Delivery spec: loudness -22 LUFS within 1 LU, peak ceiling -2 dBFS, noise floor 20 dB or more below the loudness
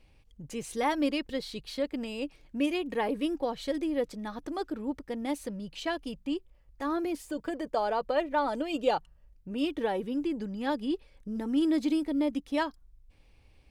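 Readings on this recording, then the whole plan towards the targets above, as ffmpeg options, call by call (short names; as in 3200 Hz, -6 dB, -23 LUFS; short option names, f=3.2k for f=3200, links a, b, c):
loudness -32.0 LUFS; peak -14.0 dBFS; loudness target -22.0 LUFS
-> -af "volume=10dB"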